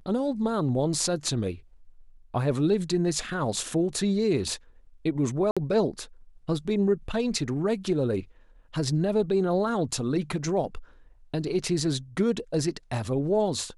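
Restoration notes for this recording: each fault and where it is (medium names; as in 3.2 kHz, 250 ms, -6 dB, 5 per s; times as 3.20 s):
5.51–5.57 s: dropout 56 ms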